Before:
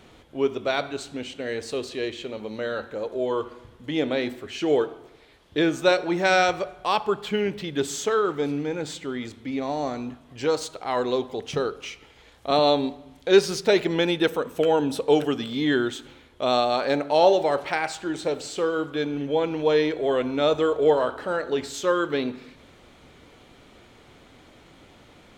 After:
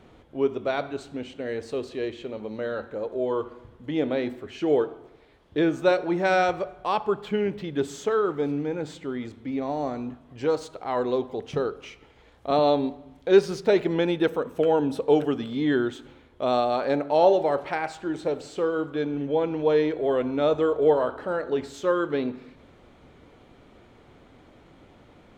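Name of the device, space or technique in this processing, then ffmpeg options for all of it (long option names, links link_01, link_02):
through cloth: -af "highshelf=frequency=2200:gain=-11.5"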